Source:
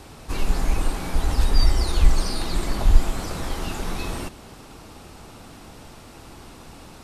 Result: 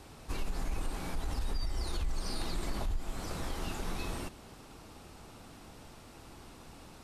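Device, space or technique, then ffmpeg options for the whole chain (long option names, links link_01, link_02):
stacked limiters: -af "alimiter=limit=-8dB:level=0:latency=1:release=347,alimiter=limit=-12dB:level=0:latency=1:release=244,alimiter=limit=-17dB:level=0:latency=1:release=46,volume=-8.5dB"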